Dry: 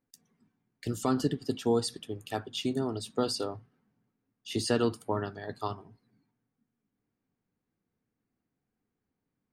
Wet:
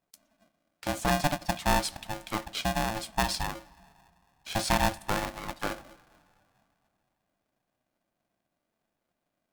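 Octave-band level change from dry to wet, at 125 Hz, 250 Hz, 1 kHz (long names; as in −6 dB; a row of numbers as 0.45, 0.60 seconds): +1.0, −2.5, +8.0 decibels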